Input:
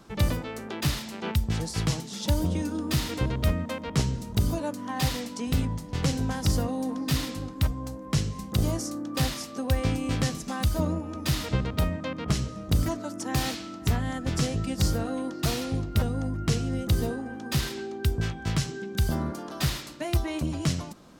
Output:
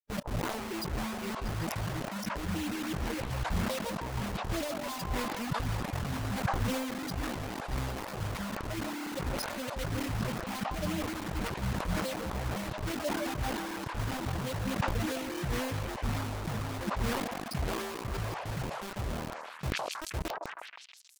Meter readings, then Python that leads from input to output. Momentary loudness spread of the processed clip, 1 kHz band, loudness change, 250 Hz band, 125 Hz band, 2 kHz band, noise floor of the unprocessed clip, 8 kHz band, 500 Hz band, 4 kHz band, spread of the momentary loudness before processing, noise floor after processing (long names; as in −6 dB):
5 LU, +0.5 dB, −6.0 dB, −6.5 dB, −9.0 dB, −1.0 dB, −40 dBFS, −7.0 dB, −3.5 dB, −6.5 dB, 5 LU, −44 dBFS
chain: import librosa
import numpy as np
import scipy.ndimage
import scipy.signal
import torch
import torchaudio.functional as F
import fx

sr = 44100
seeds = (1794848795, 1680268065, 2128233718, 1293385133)

p1 = fx.fade_out_tail(x, sr, length_s=5.47)
p2 = fx.band_shelf(p1, sr, hz=2200.0, db=-14.5, octaves=1.7)
p3 = fx.spec_topn(p2, sr, count=4)
p4 = fx.ripple_eq(p3, sr, per_octave=1.3, db=11)
p5 = fx.over_compress(p4, sr, threshold_db=-30.0, ratio=-0.5)
p6 = fx.quant_dither(p5, sr, seeds[0], bits=6, dither='none')
p7 = p6 + fx.echo_stepped(p6, sr, ms=159, hz=790.0, octaves=0.7, feedback_pct=70, wet_db=-1.0, dry=0)
p8 = fx.hpss(p7, sr, part='harmonic', gain_db=-9)
p9 = fx.sustainer(p8, sr, db_per_s=31.0)
y = F.gain(torch.from_numpy(p9), 1.5).numpy()